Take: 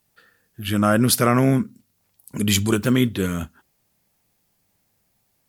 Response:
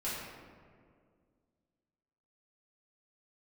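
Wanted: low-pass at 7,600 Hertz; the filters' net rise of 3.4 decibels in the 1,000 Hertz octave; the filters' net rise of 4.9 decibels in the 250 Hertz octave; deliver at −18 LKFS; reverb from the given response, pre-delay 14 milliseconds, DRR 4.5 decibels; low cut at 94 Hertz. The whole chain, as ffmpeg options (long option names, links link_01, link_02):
-filter_complex "[0:a]highpass=94,lowpass=7600,equalizer=frequency=250:width_type=o:gain=5.5,equalizer=frequency=1000:width_type=o:gain=4.5,asplit=2[link_01][link_02];[1:a]atrim=start_sample=2205,adelay=14[link_03];[link_02][link_03]afir=irnorm=-1:irlink=0,volume=-9dB[link_04];[link_01][link_04]amix=inputs=2:normalize=0,volume=-2dB"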